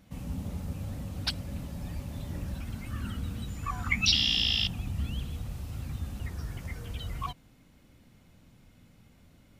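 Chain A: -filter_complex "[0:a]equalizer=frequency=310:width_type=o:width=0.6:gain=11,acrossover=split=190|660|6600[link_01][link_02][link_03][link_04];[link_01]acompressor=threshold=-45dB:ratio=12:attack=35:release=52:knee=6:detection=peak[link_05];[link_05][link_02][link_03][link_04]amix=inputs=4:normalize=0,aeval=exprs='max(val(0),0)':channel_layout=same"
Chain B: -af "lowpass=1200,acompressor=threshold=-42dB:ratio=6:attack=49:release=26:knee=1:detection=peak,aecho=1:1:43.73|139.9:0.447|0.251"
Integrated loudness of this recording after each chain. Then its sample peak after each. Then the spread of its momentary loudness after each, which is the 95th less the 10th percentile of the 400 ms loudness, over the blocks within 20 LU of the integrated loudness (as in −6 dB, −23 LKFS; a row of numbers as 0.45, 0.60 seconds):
−37.0, −39.5 LKFS; −12.5, −25.0 dBFS; 18, 21 LU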